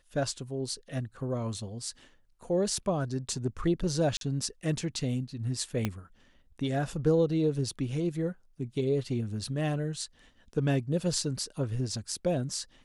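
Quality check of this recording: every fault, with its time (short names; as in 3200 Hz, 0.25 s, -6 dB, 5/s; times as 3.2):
4.17–4.21 gap 42 ms
5.85 pop -15 dBFS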